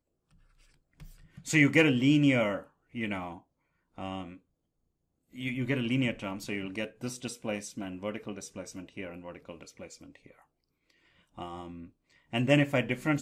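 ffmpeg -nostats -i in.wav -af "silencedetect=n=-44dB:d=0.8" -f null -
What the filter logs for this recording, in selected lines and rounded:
silence_start: 0.00
silence_end: 1.00 | silence_duration: 1.00
silence_start: 4.37
silence_end: 5.35 | silence_duration: 0.98
silence_start: 10.31
silence_end: 11.38 | silence_duration: 1.07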